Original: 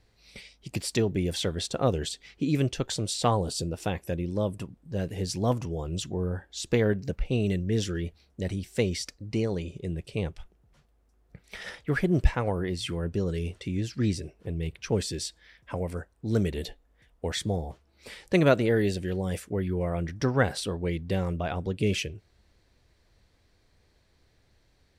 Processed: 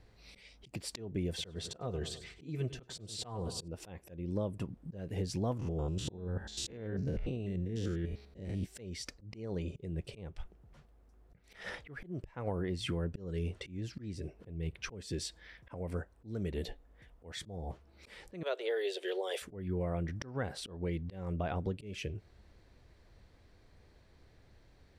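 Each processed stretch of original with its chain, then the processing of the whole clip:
1.28–3.68 s: comb of notches 280 Hz + feedback delay 100 ms, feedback 37%, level -17 dB
5.59–8.66 s: spectrogram pixelated in time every 100 ms + compressor with a negative ratio -34 dBFS + de-hum 209.6 Hz, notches 19
18.43–19.42 s: Chebyshev high-pass 390 Hz, order 5 + peaking EQ 3.4 kHz +12 dB 0.54 oct
whole clip: treble shelf 2.7 kHz -8.5 dB; compression 4:1, threshold -37 dBFS; slow attack 227 ms; trim +4 dB

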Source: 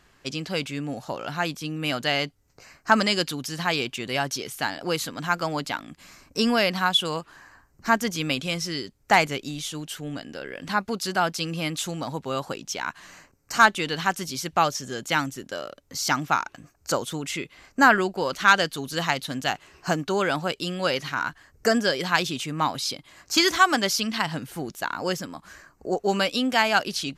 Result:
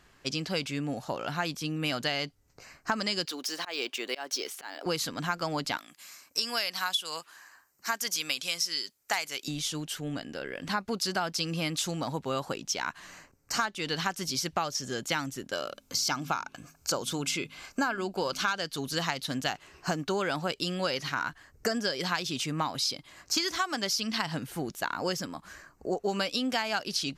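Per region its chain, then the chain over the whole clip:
3.25–4.86 s: high-pass 320 Hz 24 dB/octave + slow attack 230 ms + decimation joined by straight lines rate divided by 2×
5.77–9.48 s: high-pass 1.3 kHz 6 dB/octave + treble shelf 7.9 kHz +11.5 dB
15.53–18.58 s: Butterworth band-stop 1.9 kHz, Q 7 + de-hum 52.33 Hz, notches 5 + tape noise reduction on one side only encoder only
whole clip: dynamic bell 5.1 kHz, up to +6 dB, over -42 dBFS, Q 2.2; compression 12:1, threshold -24 dBFS; trim -1.5 dB

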